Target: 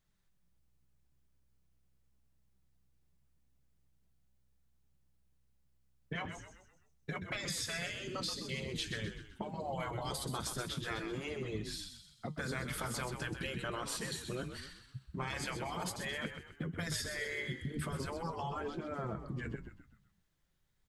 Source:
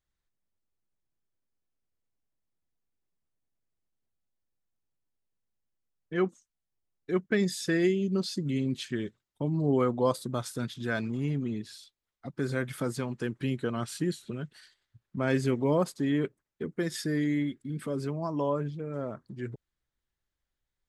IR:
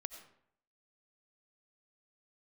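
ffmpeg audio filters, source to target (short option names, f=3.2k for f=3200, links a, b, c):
-filter_complex "[0:a]afftfilt=real='re*lt(hypot(re,im),0.0891)':imag='im*lt(hypot(re,im),0.0891)':win_size=1024:overlap=0.75,equalizer=f=160:w=1.9:g=11,acompressor=threshold=-41dB:ratio=6,flanger=delay=4.3:depth=3.6:regen=74:speed=0.43:shape=triangular,asplit=6[a][b][c][d][e][f];[b]adelay=128,afreqshift=-64,volume=-8.5dB[g];[c]adelay=256,afreqshift=-128,volume=-15.6dB[h];[d]adelay=384,afreqshift=-192,volume=-22.8dB[i];[e]adelay=512,afreqshift=-256,volume=-29.9dB[j];[f]adelay=640,afreqshift=-320,volume=-37dB[k];[a][g][h][i][j][k]amix=inputs=6:normalize=0,volume=9.5dB"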